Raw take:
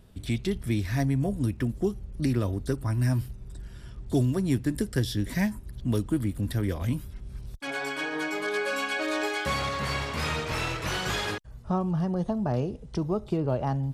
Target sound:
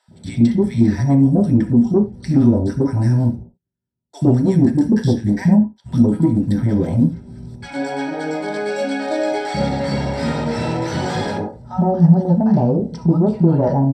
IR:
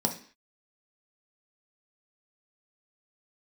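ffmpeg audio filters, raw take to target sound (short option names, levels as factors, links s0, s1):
-filter_complex "[0:a]asplit=3[s0][s1][s2];[s0]afade=t=out:st=3.35:d=0.02[s3];[s1]agate=range=0.00398:threshold=0.0282:ratio=16:detection=peak,afade=t=in:st=3.35:d=0.02,afade=t=out:st=5.76:d=0.02[s4];[s2]afade=t=in:st=5.76:d=0.02[s5];[s3][s4][s5]amix=inputs=3:normalize=0,asuperstop=centerf=1100:order=4:qfactor=5.8,aemphasis=mode=reproduction:type=75fm,acrossover=split=190|980[s6][s7][s8];[s6]adelay=80[s9];[s7]adelay=110[s10];[s9][s10][s8]amix=inputs=3:normalize=0,asoftclip=type=tanh:threshold=0.119,equalizer=f=8500:w=5.1:g=10[s11];[1:a]atrim=start_sample=2205,afade=t=out:st=0.15:d=0.01,atrim=end_sample=7056[s12];[s11][s12]afir=irnorm=-1:irlink=0,volume=1.12"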